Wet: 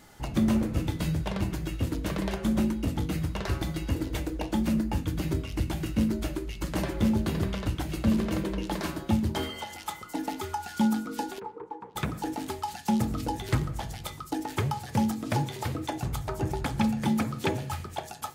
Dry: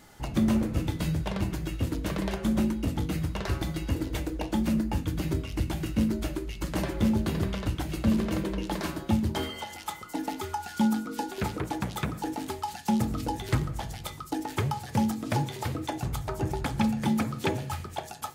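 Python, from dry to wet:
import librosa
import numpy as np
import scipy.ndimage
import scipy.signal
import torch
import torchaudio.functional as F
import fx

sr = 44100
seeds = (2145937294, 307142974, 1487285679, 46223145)

y = fx.double_bandpass(x, sr, hz=640.0, octaves=0.97, at=(11.38, 11.95), fade=0.02)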